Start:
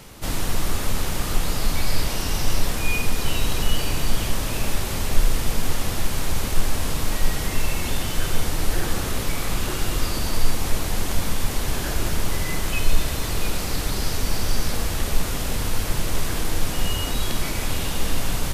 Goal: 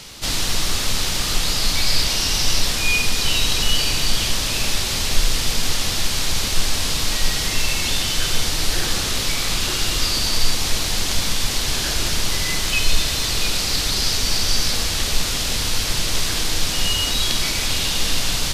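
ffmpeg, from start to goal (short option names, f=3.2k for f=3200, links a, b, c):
-af "equalizer=f=4.5k:t=o:w=2.1:g=14,volume=-1dB"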